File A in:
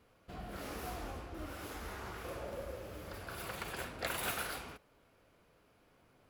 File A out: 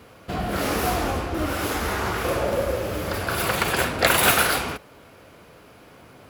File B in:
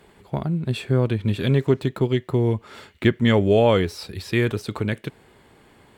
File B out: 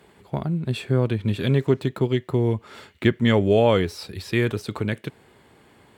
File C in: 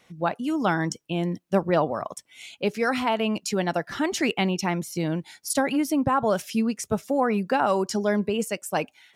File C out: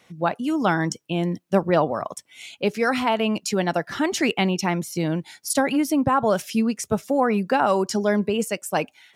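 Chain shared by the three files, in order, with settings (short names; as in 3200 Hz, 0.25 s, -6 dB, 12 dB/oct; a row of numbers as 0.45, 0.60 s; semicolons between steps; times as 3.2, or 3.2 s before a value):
HPF 61 Hz; match loudness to -23 LUFS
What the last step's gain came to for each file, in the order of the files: +19.5, -1.0, +2.5 dB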